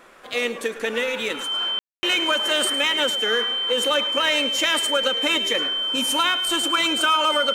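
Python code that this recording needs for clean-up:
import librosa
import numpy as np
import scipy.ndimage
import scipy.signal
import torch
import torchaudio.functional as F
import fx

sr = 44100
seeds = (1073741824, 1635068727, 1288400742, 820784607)

y = fx.fix_declip(x, sr, threshold_db=-10.0)
y = fx.notch(y, sr, hz=3100.0, q=30.0)
y = fx.fix_ambience(y, sr, seeds[0], print_start_s=0.0, print_end_s=0.5, start_s=1.79, end_s=2.03)
y = fx.fix_echo_inverse(y, sr, delay_ms=107, level_db=-14.5)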